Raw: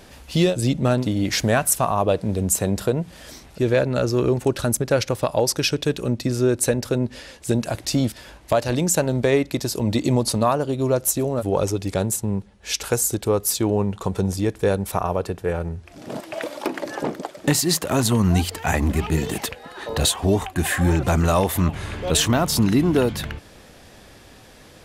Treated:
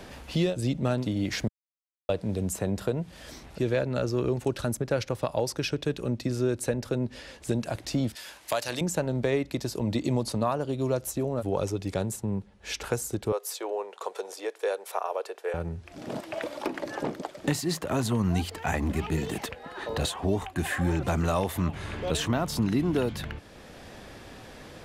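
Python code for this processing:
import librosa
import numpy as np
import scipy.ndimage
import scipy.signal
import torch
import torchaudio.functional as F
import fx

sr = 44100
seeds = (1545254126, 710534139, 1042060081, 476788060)

y = fx.tilt_eq(x, sr, slope=4.5, at=(8.15, 8.81))
y = fx.steep_highpass(y, sr, hz=430.0, slope=36, at=(13.32, 15.54))
y = fx.edit(y, sr, fx.silence(start_s=1.48, length_s=0.61), tone=tone)
y = fx.high_shelf(y, sr, hz=5500.0, db=-7.0)
y = fx.band_squash(y, sr, depth_pct=40)
y = y * 10.0 ** (-7.0 / 20.0)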